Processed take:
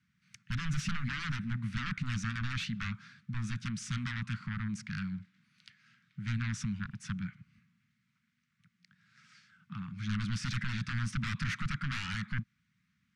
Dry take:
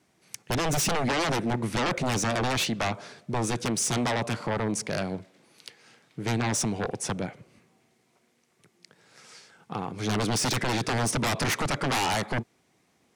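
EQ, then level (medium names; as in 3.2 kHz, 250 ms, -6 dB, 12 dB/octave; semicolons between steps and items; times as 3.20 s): elliptic band-stop 200–1400 Hz, stop band 60 dB; tape spacing loss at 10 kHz 23 dB; -2.0 dB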